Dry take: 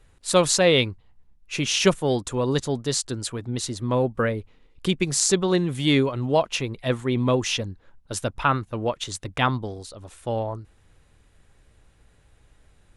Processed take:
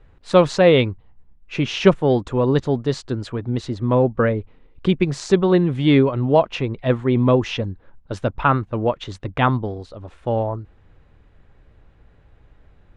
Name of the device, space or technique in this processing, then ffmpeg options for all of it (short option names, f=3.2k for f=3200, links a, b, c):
phone in a pocket: -af "lowpass=3.8k,highshelf=f=2.2k:g=-10,volume=6dB"